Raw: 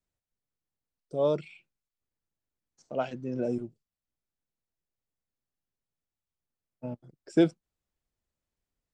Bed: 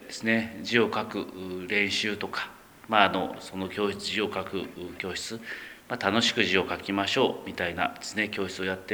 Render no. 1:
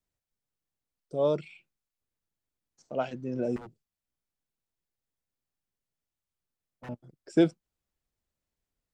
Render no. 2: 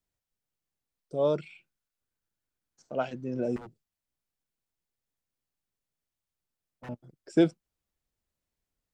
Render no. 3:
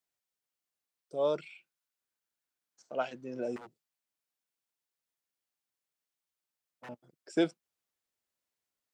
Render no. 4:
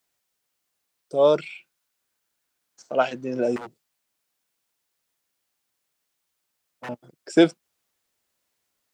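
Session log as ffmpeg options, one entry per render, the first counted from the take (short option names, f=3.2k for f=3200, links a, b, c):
-filter_complex "[0:a]asettb=1/sr,asplit=3[a][b][c];[a]atrim=end=3.564[d];[b]atrim=start=3.56:end=6.89,asetpts=PTS-STARTPTS,afade=t=in:d=0.004:c=qsin,afade=t=out:st=3.326:d=0.004:c=qsin,aeval=exprs='0.0106*(abs(mod(val(0)/0.0106+3,4)-2)-1)':c=same[e];[c]atrim=start=6.886[f];[d][e]acrossfade=d=0.004:c1=hsin:c2=qsin[g];[g][f]acrossfade=d=0.004:c1=qsin:c2=hsin"
-filter_complex "[0:a]asettb=1/sr,asplit=3[a][b][c];[a]atrim=end=1.274[d];[b]atrim=start=1.27:end=3.02,asetpts=PTS-STARTPTS,afade=t=in:d=0.004:c=qsin,afade=t=out:st=1.746:d=0.004:c=qsin,equalizer=f=1.5k:w=5.9:g=6.5[e];[c]atrim=start=3.016[f];[d][e]acrossfade=d=0.004:c1=hsin:c2=qsin[g];[g][f]acrossfade=d=0.004:c1=qsin:c2=hsin"
-af "highpass=f=600:p=1"
-af "volume=12dB"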